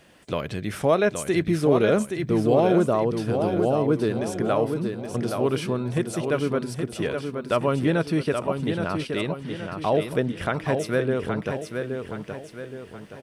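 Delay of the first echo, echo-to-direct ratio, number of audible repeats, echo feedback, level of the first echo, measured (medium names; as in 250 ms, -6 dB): 822 ms, -5.0 dB, 4, 43%, -6.0 dB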